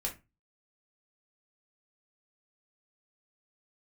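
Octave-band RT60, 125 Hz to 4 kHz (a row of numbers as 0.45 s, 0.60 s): 0.45 s, 0.30 s, 0.25 s, 0.25 s, 0.25 s, 0.20 s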